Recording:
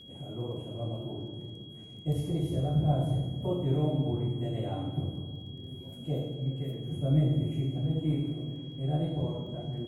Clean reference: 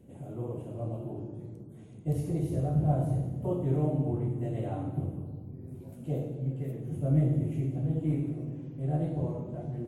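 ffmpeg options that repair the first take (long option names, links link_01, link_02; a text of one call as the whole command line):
ffmpeg -i in.wav -af "adeclick=threshold=4,bandreject=frequency=3300:width=30" out.wav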